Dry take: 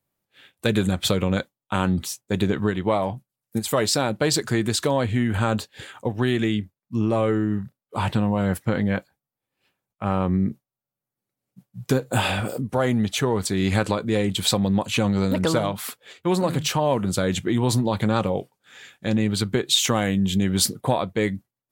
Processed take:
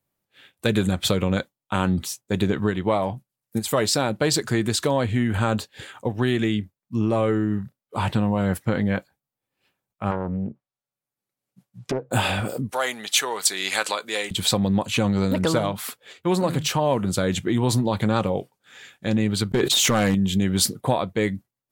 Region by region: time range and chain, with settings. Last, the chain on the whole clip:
10.11–12.11 s: low-pass that closes with the level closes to 830 Hz, closed at -20.5 dBFS + bass shelf 460 Hz -6.5 dB + loudspeaker Doppler distortion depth 0.61 ms
12.71–14.31 s: high-pass 660 Hz + treble shelf 2.1 kHz +9.5 dB
19.51–20.15 s: expander -31 dBFS + hard clipper -17 dBFS + level flattener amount 100%
whole clip: none

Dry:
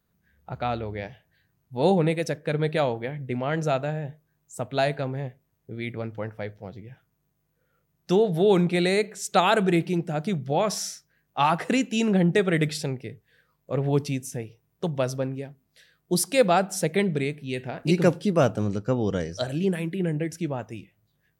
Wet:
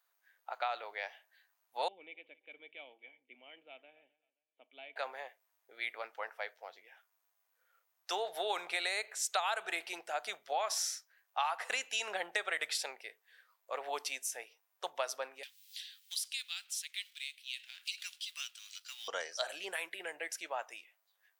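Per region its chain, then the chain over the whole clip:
1.88–4.96 s: cascade formant filter i + feedback delay 263 ms, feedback 28%, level -23 dB
15.43–19.08 s: companding laws mixed up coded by mu + ladder high-pass 2.7 kHz, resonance 45% + three bands compressed up and down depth 70%
whole clip: high-pass 730 Hz 24 dB/octave; compression 6:1, threshold -31 dBFS

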